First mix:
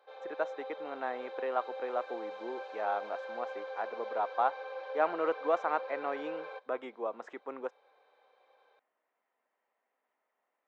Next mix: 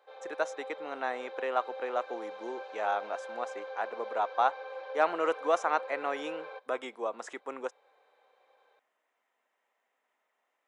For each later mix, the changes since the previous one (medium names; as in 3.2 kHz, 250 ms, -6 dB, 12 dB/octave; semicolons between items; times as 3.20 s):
speech: remove tape spacing loss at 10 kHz 30 dB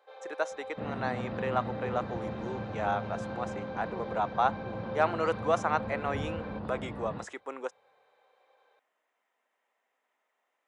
second sound: unmuted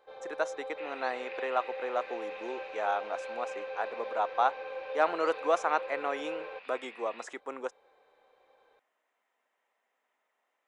first sound: remove high-pass 490 Hz 12 dB/octave; second sound: add resonant high-pass 2.4 kHz, resonance Q 10